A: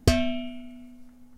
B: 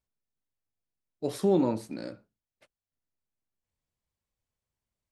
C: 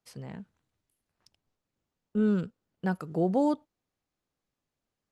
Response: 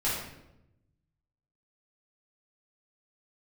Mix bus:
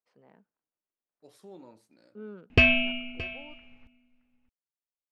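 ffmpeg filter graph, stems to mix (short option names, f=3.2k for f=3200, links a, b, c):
-filter_complex "[0:a]lowpass=f=2.6k:t=q:w=13,adelay=2500,volume=-2.5dB,asplit=2[a][b];[b]volume=-17.5dB[c];[1:a]lowshelf=f=410:g=-9,volume=-19.5dB[d];[2:a]highpass=360,adynamicsmooth=sensitivity=1.5:basefreq=2k,volume=-10.5dB,afade=t=out:st=2.54:d=0.4:silence=0.251189[e];[c]aecho=0:1:621:1[f];[a][d][e][f]amix=inputs=4:normalize=0"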